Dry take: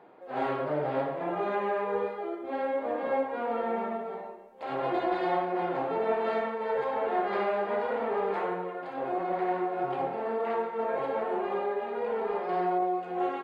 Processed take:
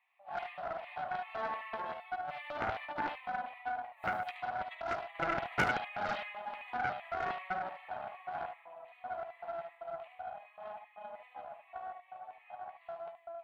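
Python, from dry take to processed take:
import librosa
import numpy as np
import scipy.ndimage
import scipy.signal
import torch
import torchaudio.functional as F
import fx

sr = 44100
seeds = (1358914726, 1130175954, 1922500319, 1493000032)

p1 = fx.doppler_pass(x, sr, speed_mps=28, closest_m=2.1, pass_at_s=3.94)
p2 = scipy.signal.sosfilt(scipy.signal.butter(2, 380.0, 'highpass', fs=sr, output='sos'), p1)
p3 = fx.high_shelf(p2, sr, hz=4200.0, db=11.0)
p4 = fx.over_compress(p3, sr, threshold_db=-57.0, ratio=-1.0)
p5 = fx.filter_lfo_highpass(p4, sr, shape='square', hz=2.6, low_hz=680.0, high_hz=1900.0, q=3.0)
p6 = fx.fixed_phaser(p5, sr, hz=1500.0, stages=6)
p7 = fx.small_body(p6, sr, hz=(720.0, 1100.0, 2500.0), ring_ms=95, db=13)
p8 = 10.0 ** (-36.0 / 20.0) * (np.abs((p7 / 10.0 ** (-36.0 / 20.0) + 3.0) % 4.0 - 2.0) - 1.0)
p9 = p8 + fx.room_early_taps(p8, sr, ms=(16, 48, 74), db=(-10.0, -14.5, -6.5), dry=0)
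p10 = fx.doppler_dist(p9, sr, depth_ms=0.73)
y = F.gain(torch.from_numpy(p10), 14.0).numpy()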